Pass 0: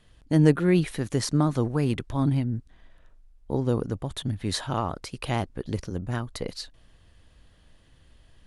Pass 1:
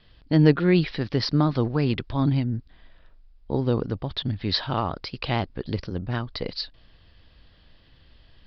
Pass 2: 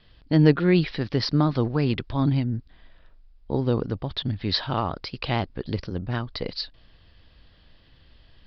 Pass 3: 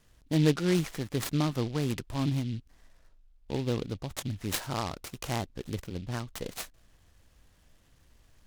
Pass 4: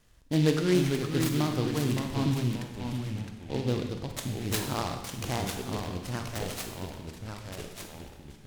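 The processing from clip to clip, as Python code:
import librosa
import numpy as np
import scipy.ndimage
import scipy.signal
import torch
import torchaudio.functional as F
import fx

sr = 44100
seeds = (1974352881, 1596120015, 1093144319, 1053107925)

y1 = scipy.signal.sosfilt(scipy.signal.butter(16, 5100.0, 'lowpass', fs=sr, output='sos'), x)
y1 = fx.high_shelf(y1, sr, hz=4000.0, db=10.0)
y1 = y1 * librosa.db_to_amplitude(1.5)
y2 = y1
y3 = fx.noise_mod_delay(y2, sr, seeds[0], noise_hz=3100.0, depth_ms=0.073)
y3 = y3 * librosa.db_to_amplitude(-7.0)
y4 = fx.rev_schroeder(y3, sr, rt60_s=1.0, comb_ms=32, drr_db=5.0)
y4 = fx.echo_pitch(y4, sr, ms=391, semitones=-2, count=3, db_per_echo=-6.0)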